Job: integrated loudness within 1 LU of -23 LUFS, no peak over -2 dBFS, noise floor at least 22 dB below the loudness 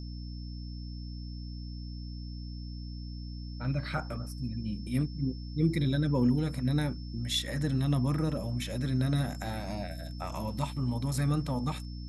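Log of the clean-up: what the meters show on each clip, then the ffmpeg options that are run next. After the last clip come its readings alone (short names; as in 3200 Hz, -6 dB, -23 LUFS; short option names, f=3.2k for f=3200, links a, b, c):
hum 60 Hz; harmonics up to 300 Hz; hum level -37 dBFS; steady tone 5300 Hz; tone level -52 dBFS; loudness -33.0 LUFS; peak -15.5 dBFS; loudness target -23.0 LUFS
-> -af "bandreject=f=60:t=h:w=6,bandreject=f=120:t=h:w=6,bandreject=f=180:t=h:w=6,bandreject=f=240:t=h:w=6,bandreject=f=300:t=h:w=6"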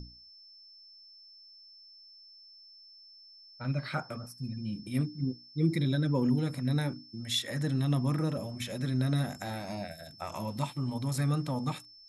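hum none; steady tone 5300 Hz; tone level -52 dBFS
-> -af "bandreject=f=5.3k:w=30"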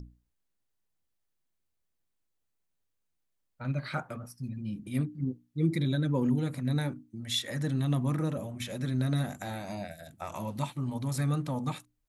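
steady tone none; loudness -32.5 LUFS; peak -16.0 dBFS; loudness target -23.0 LUFS
-> -af "volume=9.5dB"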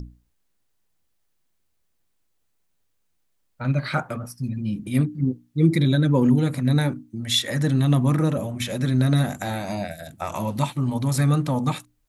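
loudness -23.0 LUFS; peak -6.5 dBFS; noise floor -70 dBFS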